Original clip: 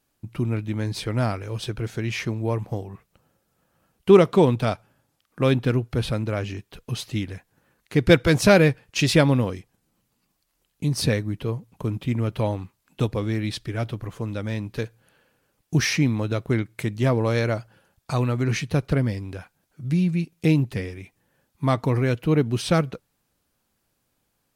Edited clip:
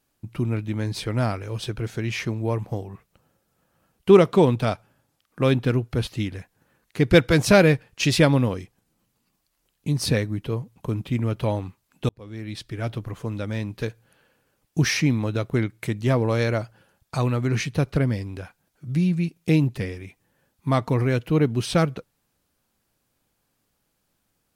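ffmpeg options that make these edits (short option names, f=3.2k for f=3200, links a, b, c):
-filter_complex "[0:a]asplit=3[a][b][c];[a]atrim=end=6.072[d];[b]atrim=start=7.028:end=13.05,asetpts=PTS-STARTPTS,afade=t=out:st=6.018:d=0.004:c=hsin[e];[c]atrim=start=13.05,asetpts=PTS-STARTPTS,afade=t=in:d=0.87[f];[e][f]concat=n=2:v=0:a=1[g];[d][g]acrossfade=d=0.004:c1=hsin:c2=hsin"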